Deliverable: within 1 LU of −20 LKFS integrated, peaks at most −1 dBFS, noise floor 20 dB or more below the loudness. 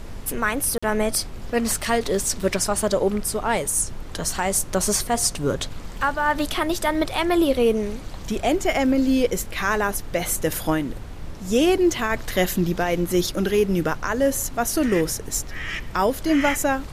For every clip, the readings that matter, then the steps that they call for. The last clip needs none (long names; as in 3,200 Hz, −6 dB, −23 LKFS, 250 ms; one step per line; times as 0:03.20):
number of dropouts 1; longest dropout 45 ms; background noise floor −35 dBFS; target noise floor −43 dBFS; integrated loudness −22.5 LKFS; sample peak −7.5 dBFS; target loudness −20.0 LKFS
→ repair the gap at 0:00.78, 45 ms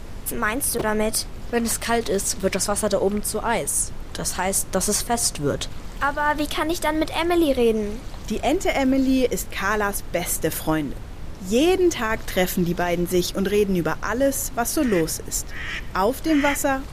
number of dropouts 0; background noise floor −35 dBFS; target noise floor −43 dBFS
→ noise reduction from a noise print 8 dB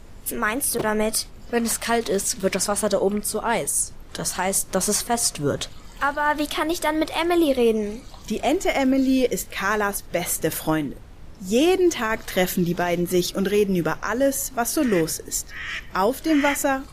background noise floor −42 dBFS; target noise floor −43 dBFS
→ noise reduction from a noise print 6 dB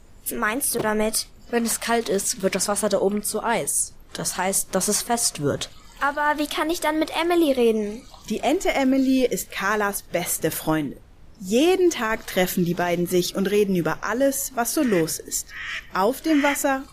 background noise floor −47 dBFS; integrated loudness −22.5 LKFS; sample peak −8.0 dBFS; target loudness −20.0 LKFS
→ level +2.5 dB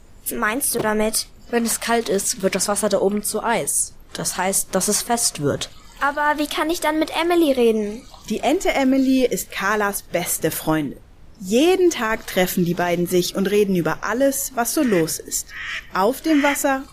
integrated loudness −20.0 LKFS; sample peak −5.5 dBFS; background noise floor −44 dBFS